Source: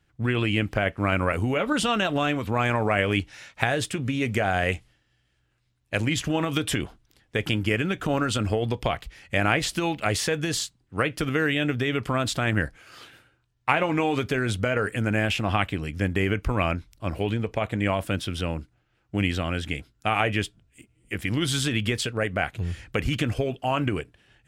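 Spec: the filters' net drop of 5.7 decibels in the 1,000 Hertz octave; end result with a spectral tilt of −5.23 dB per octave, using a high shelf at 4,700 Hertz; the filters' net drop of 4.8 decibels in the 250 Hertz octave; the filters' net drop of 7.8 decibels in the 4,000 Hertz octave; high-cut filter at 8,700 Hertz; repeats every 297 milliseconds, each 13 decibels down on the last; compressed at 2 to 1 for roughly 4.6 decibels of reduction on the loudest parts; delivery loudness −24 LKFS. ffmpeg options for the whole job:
ffmpeg -i in.wav -af "lowpass=8700,equalizer=frequency=250:width_type=o:gain=-6,equalizer=frequency=1000:width_type=o:gain=-7,equalizer=frequency=4000:width_type=o:gain=-6.5,highshelf=frequency=4700:gain=-8.5,acompressor=threshold=-31dB:ratio=2,aecho=1:1:297|594|891:0.224|0.0493|0.0108,volume=9.5dB" out.wav

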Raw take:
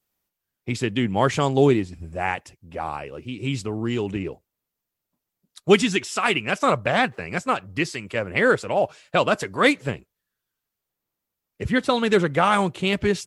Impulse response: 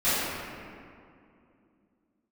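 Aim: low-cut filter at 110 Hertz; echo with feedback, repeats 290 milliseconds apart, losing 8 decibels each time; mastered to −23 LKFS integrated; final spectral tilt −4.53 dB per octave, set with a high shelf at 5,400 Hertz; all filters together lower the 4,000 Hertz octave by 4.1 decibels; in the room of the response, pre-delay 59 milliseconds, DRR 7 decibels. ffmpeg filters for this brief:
-filter_complex "[0:a]highpass=110,equalizer=frequency=4000:width_type=o:gain=-3,highshelf=frequency=5400:gain=-7.5,aecho=1:1:290|580|870|1160|1450:0.398|0.159|0.0637|0.0255|0.0102,asplit=2[link_01][link_02];[1:a]atrim=start_sample=2205,adelay=59[link_03];[link_02][link_03]afir=irnorm=-1:irlink=0,volume=-23dB[link_04];[link_01][link_04]amix=inputs=2:normalize=0,volume=-1dB"

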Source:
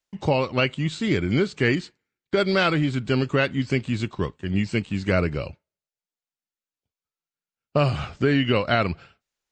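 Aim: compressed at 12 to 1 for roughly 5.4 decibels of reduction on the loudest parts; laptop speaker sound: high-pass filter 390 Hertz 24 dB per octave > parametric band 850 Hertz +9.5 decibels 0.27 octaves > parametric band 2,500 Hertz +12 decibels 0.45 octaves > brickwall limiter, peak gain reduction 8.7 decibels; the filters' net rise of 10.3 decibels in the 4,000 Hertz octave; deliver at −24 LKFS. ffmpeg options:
ffmpeg -i in.wav -af "equalizer=frequency=4000:width_type=o:gain=8.5,acompressor=threshold=-20dB:ratio=12,highpass=frequency=390:width=0.5412,highpass=frequency=390:width=1.3066,equalizer=frequency=850:width_type=o:width=0.27:gain=9.5,equalizer=frequency=2500:width_type=o:width=0.45:gain=12,volume=3dB,alimiter=limit=-11.5dB:level=0:latency=1" out.wav

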